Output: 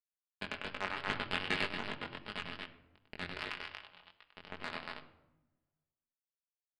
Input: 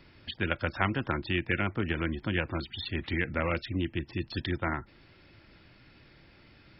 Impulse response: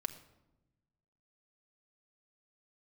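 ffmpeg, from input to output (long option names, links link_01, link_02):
-filter_complex "[0:a]acrusher=bits=2:mix=0:aa=0.5,asettb=1/sr,asplit=3[link_01][link_02][link_03];[link_01]atrim=end=3.394[link_04];[link_02]atrim=start=3.39:end=4.32,asetpts=PTS-STARTPTS,afade=type=in:duration=0.004:curve=qsin,afade=type=out:start_time=0.926:duration=0.004:curve=qsin,highpass=990[link_05];[link_03]atrim=start=4.316[link_06];[link_04][link_05]acrossfade=duration=0.004:curve1=hsin:curve2=qsin[link_07];[link_07][link_06]acrossfade=duration=0.004:curve1=qsin:curve2=hsin,alimiter=level_in=3dB:limit=-24dB:level=0:latency=1:release=235,volume=-3dB[link_08];[1:a]atrim=start_sample=2205[link_09];[link_08][link_09]afir=irnorm=-1:irlink=0,aresample=11025,aresample=44100,aecho=1:1:99.13|233.2:0.562|0.631,asoftclip=type=hard:threshold=-33.5dB,equalizer=frequency=2900:width_type=o:width=0.21:gain=5.5,adynamicsmooth=sensitivity=5:basefreq=3500,flanger=delay=19.5:depth=3.6:speed=2.6,asplit=3[link_10][link_11][link_12];[link_10]afade=type=out:start_time=1.08:duration=0.02[link_13];[link_11]acontrast=28,afade=type=in:start_time=1.08:duration=0.02,afade=type=out:start_time=1.65:duration=0.02[link_14];[link_12]afade=type=in:start_time=1.65:duration=0.02[link_15];[link_13][link_14][link_15]amix=inputs=3:normalize=0,volume=14.5dB"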